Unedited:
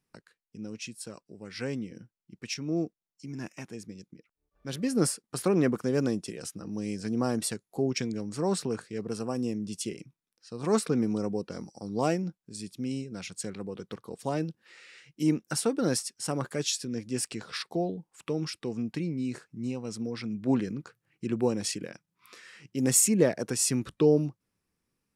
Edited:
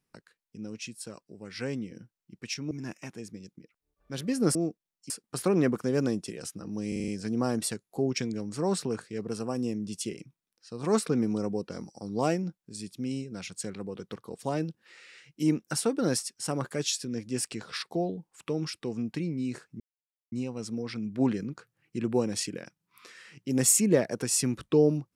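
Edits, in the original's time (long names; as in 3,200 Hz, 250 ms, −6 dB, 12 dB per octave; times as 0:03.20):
0:02.71–0:03.26: move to 0:05.10
0:06.88: stutter 0.04 s, 6 plays
0:19.60: splice in silence 0.52 s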